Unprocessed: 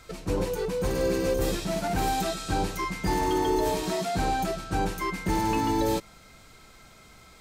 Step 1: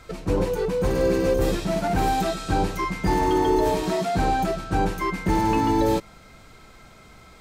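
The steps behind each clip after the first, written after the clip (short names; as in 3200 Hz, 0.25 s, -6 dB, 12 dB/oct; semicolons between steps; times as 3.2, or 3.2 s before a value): high shelf 3100 Hz -7.5 dB; gain +5 dB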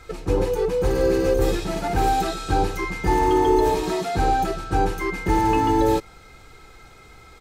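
comb 2.4 ms, depth 49%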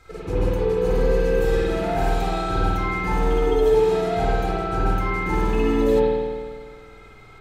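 spring tank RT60 1.7 s, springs 50 ms, chirp 40 ms, DRR -7.5 dB; gain -7.5 dB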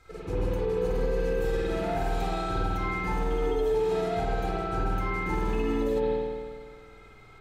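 limiter -13.5 dBFS, peak gain reduction 5 dB; gain -5.5 dB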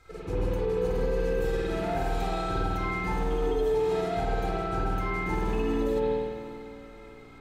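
diffused feedback echo 0.571 s, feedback 46%, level -15 dB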